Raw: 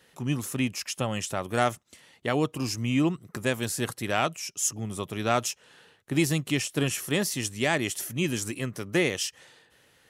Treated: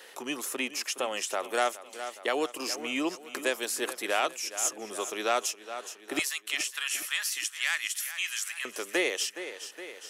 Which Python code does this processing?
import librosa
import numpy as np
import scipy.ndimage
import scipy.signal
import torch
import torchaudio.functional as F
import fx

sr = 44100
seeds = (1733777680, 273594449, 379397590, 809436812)

y = fx.highpass(x, sr, hz=fx.steps((0.0, 360.0), (6.19, 1300.0), (8.65, 380.0)), slope=24)
y = fx.echo_feedback(y, sr, ms=416, feedback_pct=46, wet_db=-15.0)
y = fx.band_squash(y, sr, depth_pct=40)